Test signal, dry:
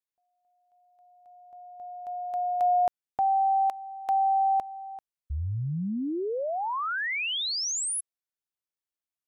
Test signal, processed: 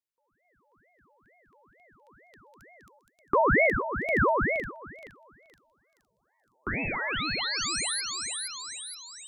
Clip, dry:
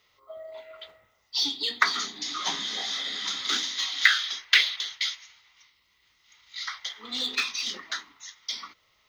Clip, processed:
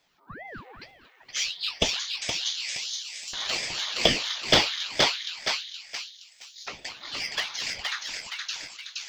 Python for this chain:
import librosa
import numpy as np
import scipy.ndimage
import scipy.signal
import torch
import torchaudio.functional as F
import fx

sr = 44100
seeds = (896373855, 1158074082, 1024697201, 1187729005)

y = fx.echo_split(x, sr, split_hz=820.0, low_ms=110, high_ms=470, feedback_pct=52, wet_db=-3.0)
y = fx.filter_lfo_highpass(y, sr, shape='saw_up', hz=0.3, low_hz=430.0, high_hz=6800.0, q=1.3)
y = fx.ring_lfo(y, sr, carrier_hz=780.0, swing_pct=85, hz=2.2)